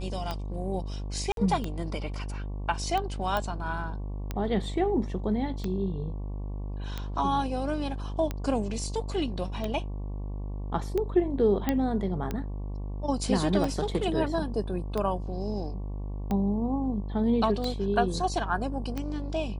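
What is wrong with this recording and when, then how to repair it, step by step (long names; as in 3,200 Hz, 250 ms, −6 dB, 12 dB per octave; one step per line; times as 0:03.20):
mains buzz 50 Hz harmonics 23 −34 dBFS
scratch tick 45 rpm −18 dBFS
0:01.32–0:01.37: drop-out 52 ms
0:03.37: click −16 dBFS
0:11.69: click −12 dBFS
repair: click removal
hum removal 50 Hz, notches 23
repair the gap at 0:01.32, 52 ms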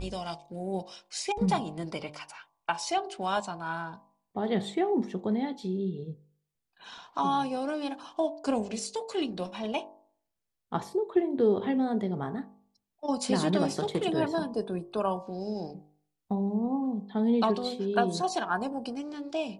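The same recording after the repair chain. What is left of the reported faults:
none of them is left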